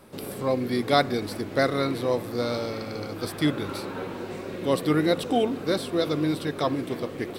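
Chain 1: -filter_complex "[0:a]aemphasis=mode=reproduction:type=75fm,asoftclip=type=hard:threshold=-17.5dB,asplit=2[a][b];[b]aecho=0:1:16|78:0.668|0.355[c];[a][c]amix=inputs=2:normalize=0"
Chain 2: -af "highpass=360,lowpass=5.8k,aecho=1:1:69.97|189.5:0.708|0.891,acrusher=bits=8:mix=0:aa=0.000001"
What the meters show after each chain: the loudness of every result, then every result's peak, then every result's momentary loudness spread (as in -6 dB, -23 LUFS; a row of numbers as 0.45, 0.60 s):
-25.0, -25.5 LUFS; -11.5, -4.0 dBFS; 9, 10 LU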